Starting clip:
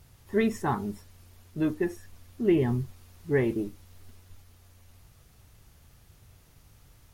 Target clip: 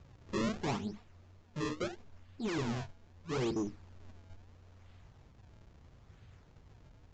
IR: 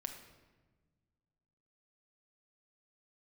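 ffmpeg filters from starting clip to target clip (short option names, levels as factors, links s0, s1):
-filter_complex "[0:a]equalizer=f=180:w=0.33:g=3.5,acrusher=samples=33:mix=1:aa=0.000001:lfo=1:lforange=52.8:lforate=0.76,asoftclip=type=tanh:threshold=0.075,asplit=3[s0][s1][s2];[s0]afade=t=out:st=0.76:d=0.02[s3];[s1]flanger=delay=4.1:depth=9.6:regen=31:speed=2:shape=sinusoidal,afade=t=in:st=0.76:d=0.02,afade=t=out:st=3.4:d=0.02[s4];[s2]afade=t=in:st=3.4:d=0.02[s5];[s3][s4][s5]amix=inputs=3:normalize=0,volume=21.1,asoftclip=hard,volume=0.0473,aresample=16000,aresample=44100,volume=0.631"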